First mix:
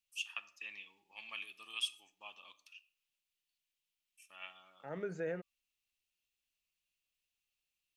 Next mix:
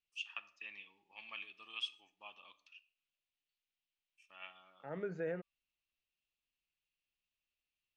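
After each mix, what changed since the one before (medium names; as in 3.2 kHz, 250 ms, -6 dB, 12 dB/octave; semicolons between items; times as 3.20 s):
master: add distance through air 160 m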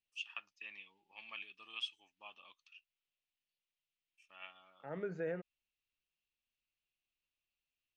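reverb: off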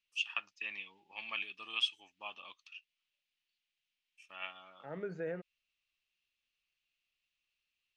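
first voice +8.5 dB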